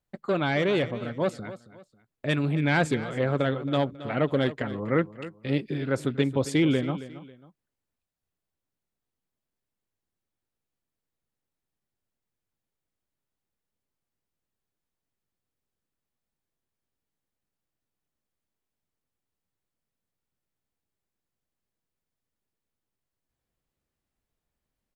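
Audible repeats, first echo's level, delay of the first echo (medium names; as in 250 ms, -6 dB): 2, -15.0 dB, 272 ms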